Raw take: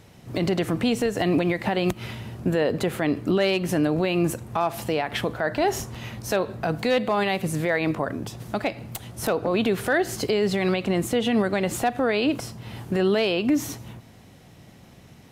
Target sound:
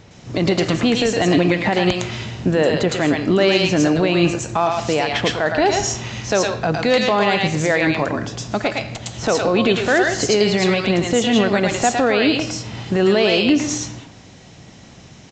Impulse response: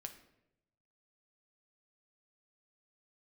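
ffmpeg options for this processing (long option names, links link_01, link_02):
-filter_complex "[0:a]asplit=2[link_01][link_02];[link_02]aemphasis=mode=production:type=riaa[link_03];[1:a]atrim=start_sample=2205,adelay=110[link_04];[link_03][link_04]afir=irnorm=-1:irlink=0,volume=1dB[link_05];[link_01][link_05]amix=inputs=2:normalize=0,aresample=16000,aresample=44100,volume=5.5dB"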